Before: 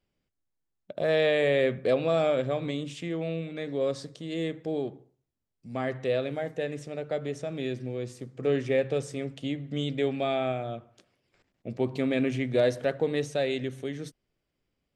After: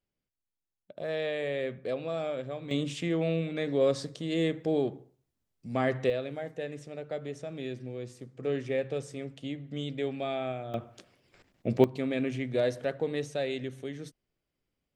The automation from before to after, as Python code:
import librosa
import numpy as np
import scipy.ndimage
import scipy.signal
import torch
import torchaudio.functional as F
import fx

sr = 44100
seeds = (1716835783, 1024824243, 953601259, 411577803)

y = fx.gain(x, sr, db=fx.steps((0.0, -8.5), (2.71, 3.0), (6.1, -5.0), (10.74, 7.0), (11.84, -4.0)))